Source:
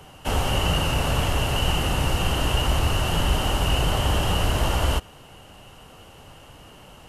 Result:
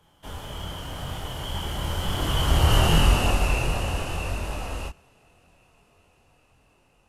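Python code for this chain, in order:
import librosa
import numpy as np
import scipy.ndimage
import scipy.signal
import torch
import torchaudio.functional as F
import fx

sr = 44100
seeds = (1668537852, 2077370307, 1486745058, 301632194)

y = fx.doppler_pass(x, sr, speed_mps=28, closest_m=11.0, pass_at_s=2.9)
y = fx.chorus_voices(y, sr, voices=2, hz=0.91, base_ms=24, depth_ms=2.4, mix_pct=40)
y = y * 10.0 ** (6.0 / 20.0)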